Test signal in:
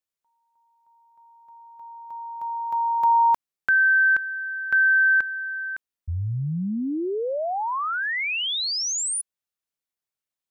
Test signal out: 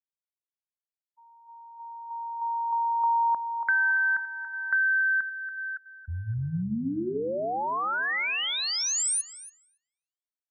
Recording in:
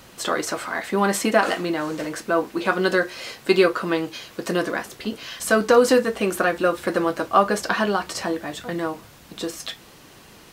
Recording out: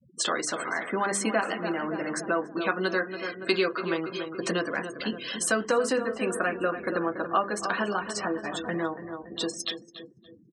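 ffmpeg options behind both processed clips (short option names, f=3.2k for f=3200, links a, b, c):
-filter_complex "[0:a]acrossover=split=360|1200|4300[a][b][c][d];[a]acontrast=53[e];[e][b][c][d]amix=inputs=4:normalize=0,adynamicequalizer=threshold=0.01:dfrequency=4000:dqfactor=0.8:tfrequency=4000:tqfactor=0.8:attack=5:release=100:ratio=0.4:range=3.5:mode=cutabove:tftype=bell,bandreject=f=50:t=h:w=6,bandreject=f=100:t=h:w=6,bandreject=f=150:t=h:w=6,bandreject=f=200:t=h:w=6,bandreject=f=250:t=h:w=6,bandreject=f=300:t=h:w=6,bandreject=f=350:t=h:w=6,bandreject=f=400:t=h:w=6,afftfilt=real='re*gte(hypot(re,im),0.02)':imag='im*gte(hypot(re,im),0.02)':win_size=1024:overlap=0.75,highpass=f=150:p=1,tiltshelf=f=1.2k:g=-5,asplit=2[f][g];[g]adelay=283,lowpass=f=2.8k:p=1,volume=-10dB,asplit=2[h][i];[i]adelay=283,lowpass=f=2.8k:p=1,volume=0.53,asplit=2[j][k];[k]adelay=283,lowpass=f=2.8k:p=1,volume=0.53,asplit=2[l][m];[m]adelay=283,lowpass=f=2.8k:p=1,volume=0.53,asplit=2[n][o];[o]adelay=283,lowpass=f=2.8k:p=1,volume=0.53,asplit=2[p][q];[q]adelay=283,lowpass=f=2.8k:p=1,volume=0.53[r];[f][h][j][l][n][p][r]amix=inputs=7:normalize=0,afftdn=nr=22:nf=-45,aresample=22050,aresample=44100,acompressor=threshold=-27dB:ratio=2:attack=36:release=697:knee=1:detection=rms"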